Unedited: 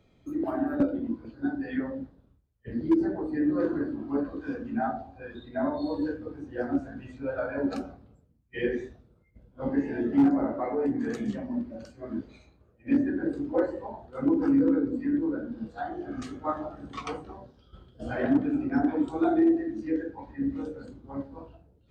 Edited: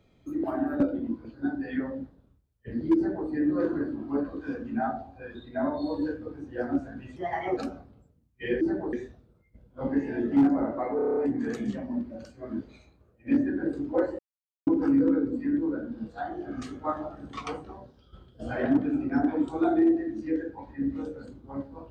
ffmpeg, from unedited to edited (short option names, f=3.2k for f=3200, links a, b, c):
-filter_complex "[0:a]asplit=14[a][b][c][d][e][f][g][h][i][j][k][l][m][n];[a]atrim=end=7.164[o];[b]atrim=start=7.16:end=7.7,asetpts=PTS-STARTPTS,asetrate=58212,aresample=44100[p];[c]atrim=start=7.696:end=8.742[q];[d]atrim=start=2.958:end=3.282[r];[e]atrim=start=8.738:end=10.802[s];[f]atrim=start=10.768:end=10.802[t];[g]atrim=start=10.768:end=10.802[u];[h]atrim=start=10.768:end=10.802[v];[i]atrim=start=10.768:end=10.802[w];[j]atrim=start=10.768:end=10.802[x];[k]atrim=start=10.768:end=10.802[y];[l]atrim=start=10.768:end=13.79,asetpts=PTS-STARTPTS,afade=t=out:st=3.018:d=0.004:c=hsin[z];[m]atrim=start=13.79:end=14.27,asetpts=PTS-STARTPTS,volume=0[aa];[n]atrim=start=14.27,asetpts=PTS-STARTPTS,afade=t=in:d=0.004:c=hsin[ab];[o][p]acrossfade=d=0.004:c1=hsin:c2=hsin[ac];[ac][q]acrossfade=d=0.004:c1=hsin:c2=hsin[ad];[ad][r]acrossfade=d=0.004:c1=hsin:c2=hsin[ae];[ae][s]acrossfade=d=0.004:c1=hsin:c2=hsin[af];[af][t]acrossfade=d=0.004:c1=hsin:c2=hsin[ag];[ag][u]acrossfade=d=0.004:c1=hsin:c2=hsin[ah];[ah][v]acrossfade=d=0.004:c1=hsin:c2=hsin[ai];[ai][w]acrossfade=d=0.004:c1=hsin:c2=hsin[aj];[aj][x]acrossfade=d=0.004:c1=hsin:c2=hsin[ak];[ak][y]acrossfade=d=0.004:c1=hsin:c2=hsin[al];[z][aa][ab]concat=n=3:v=0:a=1[am];[al][am]acrossfade=d=0.004:c1=hsin:c2=hsin"